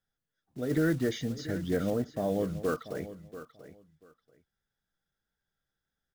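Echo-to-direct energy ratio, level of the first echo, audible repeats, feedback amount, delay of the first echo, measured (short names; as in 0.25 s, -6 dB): -14.0 dB, -14.0 dB, 2, 19%, 0.687 s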